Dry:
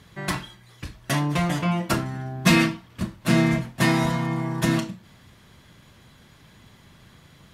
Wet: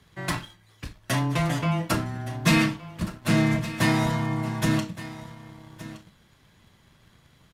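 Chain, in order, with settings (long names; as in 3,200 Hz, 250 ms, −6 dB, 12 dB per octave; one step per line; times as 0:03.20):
frequency shifter −13 Hz
single-tap delay 1,168 ms −16 dB
leveller curve on the samples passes 1
level −5 dB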